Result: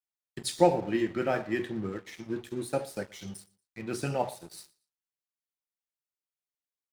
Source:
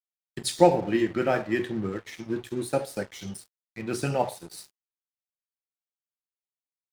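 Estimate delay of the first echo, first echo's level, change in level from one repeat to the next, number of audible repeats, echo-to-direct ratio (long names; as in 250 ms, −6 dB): 117 ms, −23.0 dB, −11.5 dB, 2, −22.5 dB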